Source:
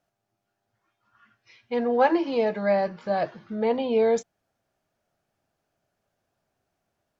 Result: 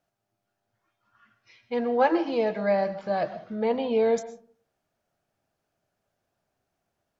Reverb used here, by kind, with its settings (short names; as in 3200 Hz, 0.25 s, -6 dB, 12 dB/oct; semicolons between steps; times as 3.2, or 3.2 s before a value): digital reverb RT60 0.47 s, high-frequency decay 0.4×, pre-delay 80 ms, DRR 13.5 dB; gain -1.5 dB